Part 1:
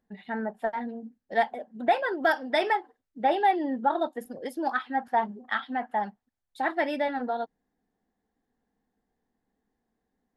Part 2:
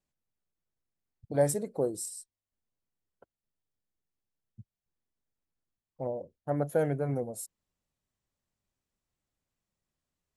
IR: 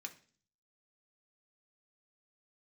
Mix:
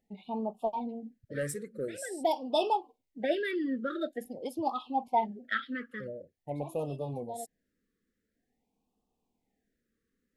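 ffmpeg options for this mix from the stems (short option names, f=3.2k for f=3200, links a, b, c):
-filter_complex "[0:a]volume=-2dB[a];[1:a]equalizer=f=1.8k:w=1.7:g=12,asoftclip=type=tanh:threshold=-17dB,volume=-6dB,asplit=2[b][c];[c]apad=whole_len=457047[d];[a][d]sidechaincompress=threshold=-50dB:ratio=8:attack=26:release=204[e];[e][b]amix=inputs=2:normalize=0,afftfilt=real='re*(1-between(b*sr/1024,770*pow(1800/770,0.5+0.5*sin(2*PI*0.47*pts/sr))/1.41,770*pow(1800/770,0.5+0.5*sin(2*PI*0.47*pts/sr))*1.41))':imag='im*(1-between(b*sr/1024,770*pow(1800/770,0.5+0.5*sin(2*PI*0.47*pts/sr))/1.41,770*pow(1800/770,0.5+0.5*sin(2*PI*0.47*pts/sr))*1.41))':win_size=1024:overlap=0.75"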